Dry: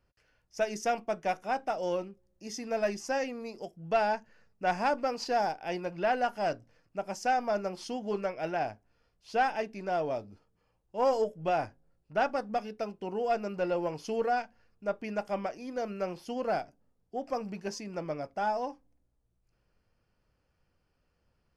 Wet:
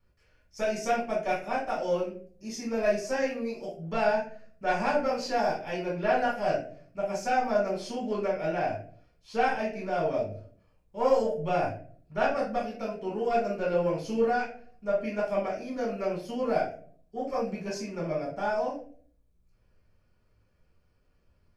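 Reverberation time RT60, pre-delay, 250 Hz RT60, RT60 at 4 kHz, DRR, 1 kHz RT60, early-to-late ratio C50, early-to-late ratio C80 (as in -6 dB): 0.50 s, 5 ms, 0.70 s, 0.30 s, -5.5 dB, 0.40 s, 6.0 dB, 11.5 dB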